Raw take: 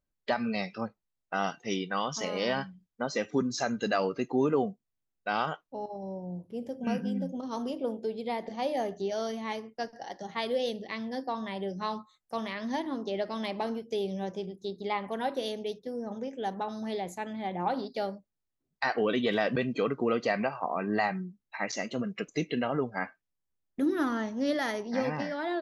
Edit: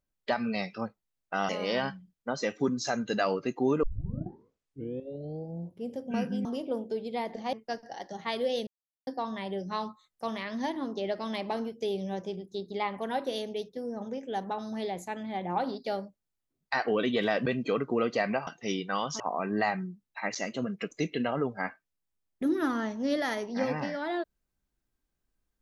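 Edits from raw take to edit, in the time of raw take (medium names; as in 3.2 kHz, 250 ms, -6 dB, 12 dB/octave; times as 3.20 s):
1.49–2.22 s: move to 20.57 s
4.56 s: tape start 1.86 s
7.18–7.58 s: delete
8.66–9.63 s: delete
10.77–11.17 s: mute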